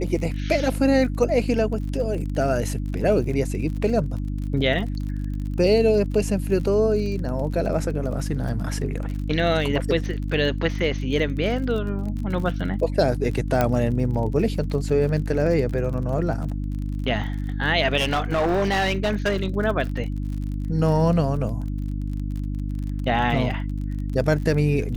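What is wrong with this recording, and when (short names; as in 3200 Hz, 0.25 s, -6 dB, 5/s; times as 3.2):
crackle 40/s -31 dBFS
hum 50 Hz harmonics 6 -27 dBFS
13.61 pop -7 dBFS
17.97–19.48 clipped -17.5 dBFS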